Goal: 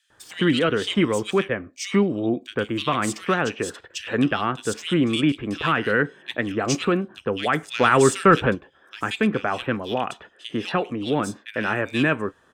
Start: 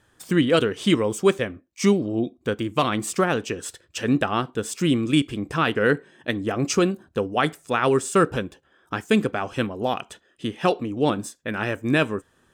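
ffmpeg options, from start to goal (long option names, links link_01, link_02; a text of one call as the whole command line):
ffmpeg -i in.wav -filter_complex "[0:a]acrossover=split=270|1500|5500[link_01][link_02][link_03][link_04];[link_02]alimiter=limit=-21dB:level=0:latency=1:release=313[link_05];[link_01][link_05][link_03][link_04]amix=inputs=4:normalize=0,asettb=1/sr,asplit=3[link_06][link_07][link_08];[link_06]atrim=end=7.634[link_09];[link_07]atrim=start=7.63:end=8.45,asetpts=PTS-STARTPTS,afade=type=in:duration=0.004:curve=qsin,afade=type=out:start_time=0.816:duration=0.004:curve=qsin,acontrast=51[link_10];[link_08]atrim=start=8.446[link_11];[link_09][link_10]acrossfade=duration=0.004:curve1=hsin:curve2=qsin[link_12];[link_12][link_11]acrossfade=duration=0.004:curve1=qsin:curve2=hsin,asplit=2[link_13][link_14];[link_14]highpass=frequency=720:poles=1,volume=9dB,asoftclip=type=tanh:threshold=-6dB[link_15];[link_13][link_15]amix=inputs=2:normalize=0,lowpass=frequency=2200:poles=1,volume=-6dB,acrossover=split=2500[link_16][link_17];[link_16]adelay=100[link_18];[link_18][link_17]amix=inputs=2:normalize=0,volume=3.5dB" out.wav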